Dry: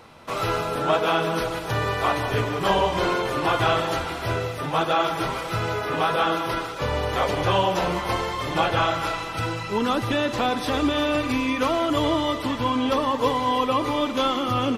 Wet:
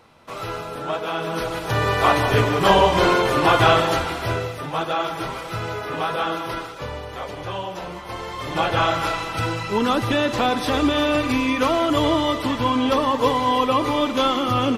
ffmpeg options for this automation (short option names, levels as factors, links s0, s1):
-af "volume=7.5,afade=t=in:st=1.12:d=1:silence=0.281838,afade=t=out:st=3.69:d=0.98:silence=0.398107,afade=t=out:st=6.6:d=0.45:silence=0.473151,afade=t=in:st=8.08:d=0.84:silence=0.266073"